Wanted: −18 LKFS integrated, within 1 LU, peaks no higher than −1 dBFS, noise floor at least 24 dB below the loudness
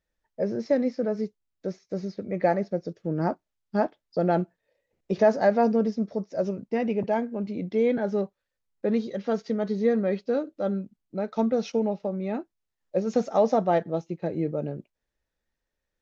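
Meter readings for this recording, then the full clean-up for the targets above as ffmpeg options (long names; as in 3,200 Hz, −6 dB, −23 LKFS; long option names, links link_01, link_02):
integrated loudness −27.5 LKFS; sample peak −9.5 dBFS; target loudness −18.0 LKFS
→ -af "volume=9.5dB,alimiter=limit=-1dB:level=0:latency=1"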